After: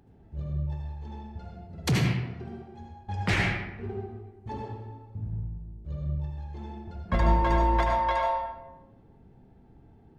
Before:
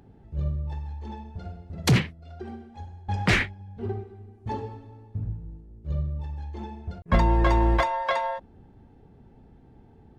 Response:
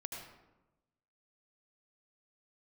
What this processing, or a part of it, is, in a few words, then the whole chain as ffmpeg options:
bathroom: -filter_complex "[1:a]atrim=start_sample=2205[a];[0:a][a]afir=irnorm=-1:irlink=0,volume=-1.5dB"

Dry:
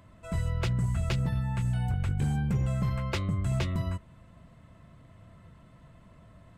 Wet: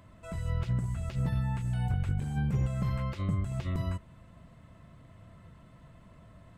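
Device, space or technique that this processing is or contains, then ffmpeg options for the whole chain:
de-esser from a sidechain: -filter_complex "[0:a]asplit=2[a][b];[b]highpass=5.9k,apad=whole_len=289903[c];[a][c]sidechaincompress=threshold=-58dB:ratio=10:attack=2.8:release=24"

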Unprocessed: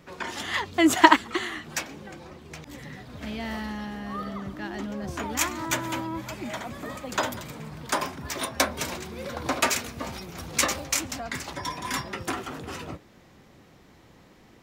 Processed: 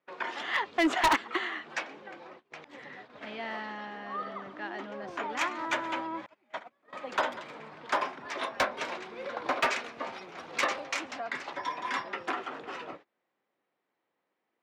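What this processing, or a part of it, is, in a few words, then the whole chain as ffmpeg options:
walkie-talkie: -filter_complex "[0:a]highpass=440,lowpass=2.8k,asoftclip=type=hard:threshold=-19.5dB,agate=range=-23dB:threshold=-49dB:ratio=16:detection=peak,asettb=1/sr,asplit=3[a][b][c];[a]atrim=end=6.264[d];[b]atrim=start=6.26:end=6.93,asetpts=PTS-STARTPTS,afade=t=in:d=0.004:c=qsin,afade=t=out:st=0.666:d=0.004:c=qsin,agate=range=-31dB:threshold=-34dB:ratio=16:detection=peak[e];[c]atrim=start=6.926[f];[d][e]acrossfade=d=0.004:c1=hsin:c2=qsin[g];[g][f]acrossfade=d=0.004:c1=qsin:c2=hsin"

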